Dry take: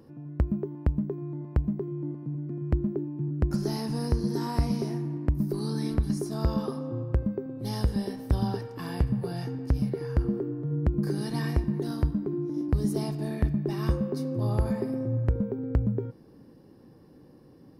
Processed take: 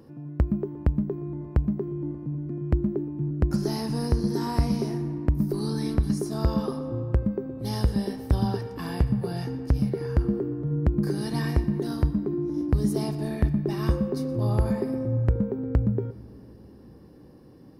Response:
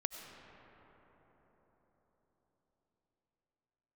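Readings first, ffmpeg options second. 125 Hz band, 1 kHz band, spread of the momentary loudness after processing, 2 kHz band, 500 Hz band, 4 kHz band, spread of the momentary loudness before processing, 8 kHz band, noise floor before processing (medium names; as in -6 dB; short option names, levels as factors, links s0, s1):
+2.5 dB, +2.5 dB, 6 LU, +2.5 dB, +2.5 dB, +2.5 dB, 6 LU, +2.5 dB, -54 dBFS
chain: -filter_complex "[0:a]asplit=2[s0][s1];[1:a]atrim=start_sample=2205,adelay=120[s2];[s1][s2]afir=irnorm=-1:irlink=0,volume=0.126[s3];[s0][s3]amix=inputs=2:normalize=0,volume=1.33"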